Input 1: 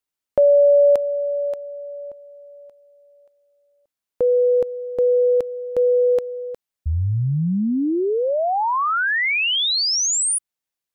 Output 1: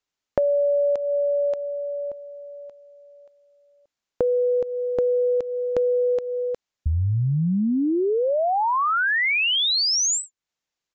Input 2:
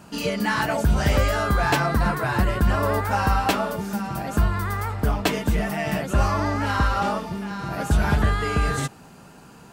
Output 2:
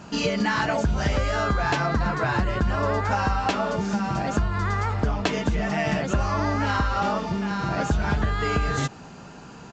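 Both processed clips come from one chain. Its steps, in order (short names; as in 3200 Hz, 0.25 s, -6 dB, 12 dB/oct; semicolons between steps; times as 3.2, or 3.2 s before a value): compressor 6:1, threshold -24 dBFS; downsampling 16000 Hz; gain +4 dB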